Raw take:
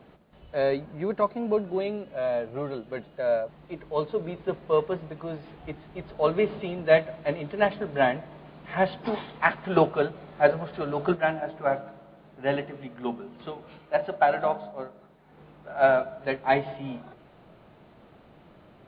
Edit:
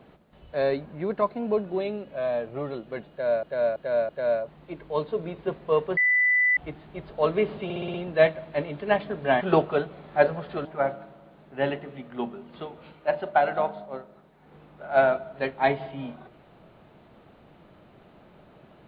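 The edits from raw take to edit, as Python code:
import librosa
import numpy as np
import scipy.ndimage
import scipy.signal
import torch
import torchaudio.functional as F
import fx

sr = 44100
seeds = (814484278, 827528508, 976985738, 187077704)

y = fx.edit(x, sr, fx.repeat(start_s=3.1, length_s=0.33, count=4),
    fx.bleep(start_s=4.98, length_s=0.6, hz=1990.0, db=-18.0),
    fx.stutter(start_s=6.65, slice_s=0.06, count=6),
    fx.cut(start_s=8.12, length_s=1.53),
    fx.cut(start_s=10.89, length_s=0.62), tone=tone)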